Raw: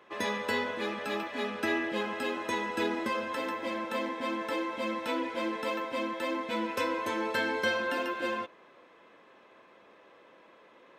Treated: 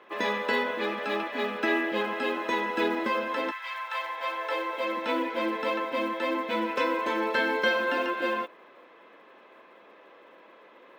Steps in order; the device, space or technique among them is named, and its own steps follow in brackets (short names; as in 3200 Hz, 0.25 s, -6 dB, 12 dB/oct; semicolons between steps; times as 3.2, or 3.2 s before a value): early digital voice recorder (BPF 230–4000 Hz; block floating point 7-bit); 3.5–4.96 HPF 1300 Hz -> 300 Hz 24 dB/oct; gain +4.5 dB